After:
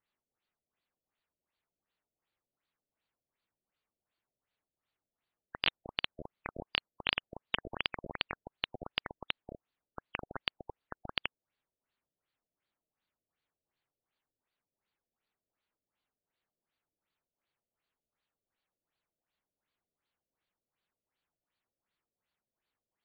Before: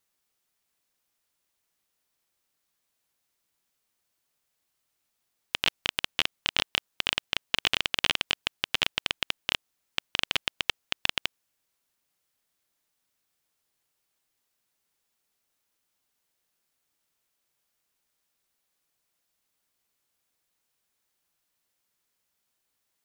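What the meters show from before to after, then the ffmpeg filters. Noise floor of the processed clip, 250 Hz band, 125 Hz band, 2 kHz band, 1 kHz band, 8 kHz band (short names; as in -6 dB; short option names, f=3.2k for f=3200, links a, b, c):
under -85 dBFS, -4.0 dB, -4.0 dB, -9.0 dB, -6.5 dB, under -35 dB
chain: -af "afftfilt=real='re*lt(b*sr/1024,650*pow(4900/650,0.5+0.5*sin(2*PI*2.7*pts/sr)))':imag='im*lt(b*sr/1024,650*pow(4900/650,0.5+0.5*sin(2*PI*2.7*pts/sr)))':win_size=1024:overlap=0.75,volume=-4dB"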